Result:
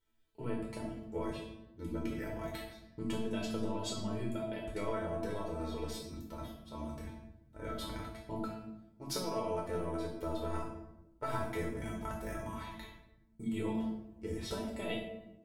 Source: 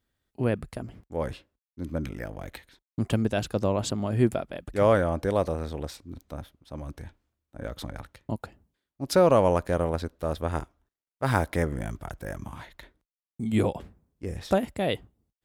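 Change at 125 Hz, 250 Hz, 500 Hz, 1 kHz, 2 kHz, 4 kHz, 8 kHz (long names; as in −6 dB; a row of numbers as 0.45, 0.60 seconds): −13.0, −8.5, −12.5, −10.5, −10.5, −5.5, −6.5 decibels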